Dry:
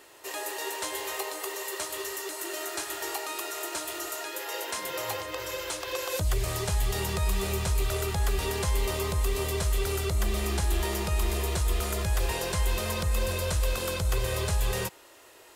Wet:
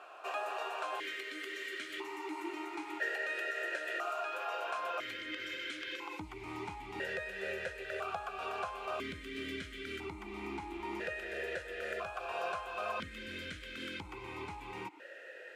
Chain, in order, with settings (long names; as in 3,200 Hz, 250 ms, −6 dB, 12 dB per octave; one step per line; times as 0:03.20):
parametric band 1,500 Hz +14.5 dB 0.59 octaves
downward compressor, threshold −31 dBFS, peak gain reduction 10 dB
formant filter that steps through the vowels 1 Hz
level +10.5 dB